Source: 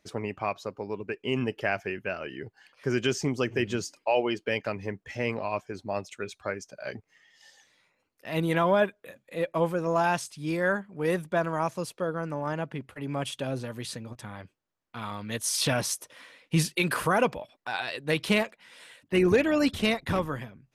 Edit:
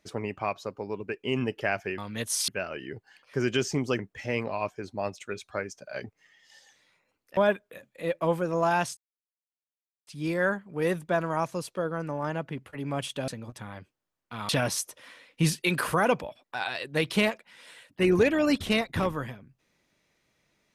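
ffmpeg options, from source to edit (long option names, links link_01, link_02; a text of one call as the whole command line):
ffmpeg -i in.wav -filter_complex "[0:a]asplit=8[link_01][link_02][link_03][link_04][link_05][link_06][link_07][link_08];[link_01]atrim=end=1.982[link_09];[link_02]atrim=start=15.118:end=15.622[link_10];[link_03]atrim=start=1.978:end=3.492[link_11];[link_04]atrim=start=4.898:end=8.282[link_12];[link_05]atrim=start=8.698:end=10.3,asetpts=PTS-STARTPTS,afade=type=out:start_time=1.598:duration=0.004:curve=hsin,apad=pad_dur=1.1[link_13];[link_06]atrim=start=10.3:end=13.512,asetpts=PTS-STARTPTS,afade=type=in:duration=0.004:curve=hsin[link_14];[link_07]atrim=start=13.908:end=15.122[link_15];[link_08]atrim=start=15.618[link_16];[link_09][link_10]acrossfade=duration=0.004:curve1=hsin:curve2=hsin[link_17];[link_17][link_11]acrossfade=duration=0.004:curve1=hsin:curve2=hsin[link_18];[link_18][link_12]acrossfade=duration=0.004:curve1=hsin:curve2=hsin[link_19];[link_13][link_14]concat=n=2:v=0:a=1[link_20];[link_19][link_20]acrossfade=duration=0.004:curve1=hsin:curve2=hsin[link_21];[link_21][link_15]acrossfade=duration=0.004:curve1=hsin:curve2=hsin[link_22];[link_22][link_16]acrossfade=duration=0.004:curve1=hsin:curve2=hsin" out.wav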